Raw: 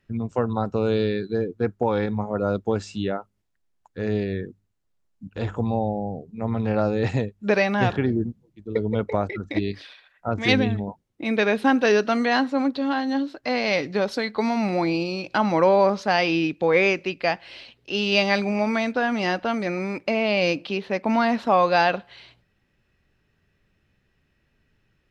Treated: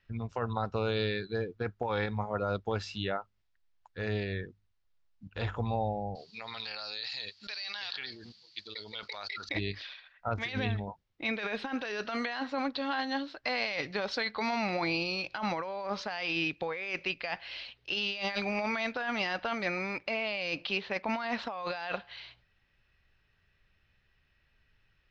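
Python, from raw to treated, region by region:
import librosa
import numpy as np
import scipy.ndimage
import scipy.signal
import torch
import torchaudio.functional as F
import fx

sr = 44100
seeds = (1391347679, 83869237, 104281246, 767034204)

y = fx.chain(x, sr, fx.bandpass_q(hz=4500.0, q=9.0),
    fx.env_flatten(amount_pct=100), at=(6.15, 9.49))
y = scipy.signal.sosfilt(scipy.signal.butter(4, 5200.0, 'lowpass', fs=sr, output='sos'), y)
y = fx.peak_eq(y, sr, hz=260.0, db=-13.5, octaves=2.6)
y = fx.over_compress(y, sr, threshold_db=-31.0, ratio=-1.0)
y = y * librosa.db_to_amplitude(-1.5)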